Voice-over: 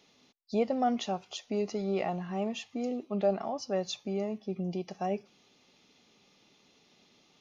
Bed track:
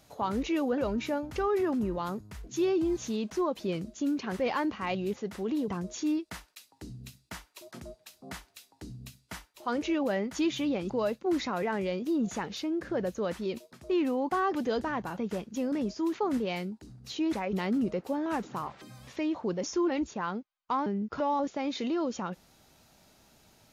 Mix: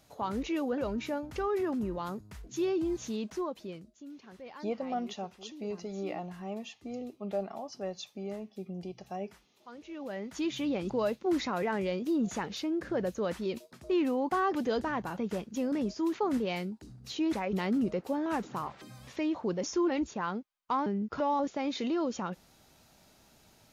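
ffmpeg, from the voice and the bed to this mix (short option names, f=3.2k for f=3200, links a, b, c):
-filter_complex "[0:a]adelay=4100,volume=-6dB[a];[1:a]volume=14dB,afade=t=out:st=3.23:d=0.68:silence=0.188365,afade=t=in:st=9.86:d=0.99:silence=0.141254[b];[a][b]amix=inputs=2:normalize=0"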